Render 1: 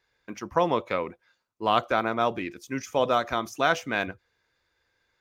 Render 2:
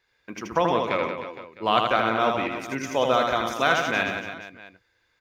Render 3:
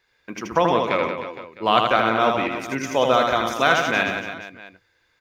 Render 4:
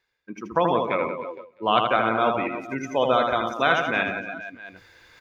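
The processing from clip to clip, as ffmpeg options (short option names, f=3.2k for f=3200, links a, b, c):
-filter_complex "[0:a]equalizer=f=2.5k:t=o:w=1.3:g=4,asplit=2[a][b];[b]aecho=0:1:80|180|305|461.2|656.6:0.631|0.398|0.251|0.158|0.1[c];[a][c]amix=inputs=2:normalize=0"
-af "bandreject=f=50:t=h:w=6,bandreject=f=100:t=h:w=6,volume=3.5dB"
-filter_complex "[0:a]afftdn=nr=17:nf=-28,areverse,acompressor=mode=upward:threshold=-25dB:ratio=2.5,areverse,asplit=2[a][b];[b]adelay=279.9,volume=-29dB,highshelf=f=4k:g=-6.3[c];[a][c]amix=inputs=2:normalize=0,volume=-2.5dB"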